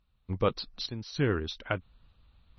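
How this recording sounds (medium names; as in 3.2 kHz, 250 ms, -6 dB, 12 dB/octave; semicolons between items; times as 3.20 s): random-step tremolo 3.5 Hz, depth 85%; MP3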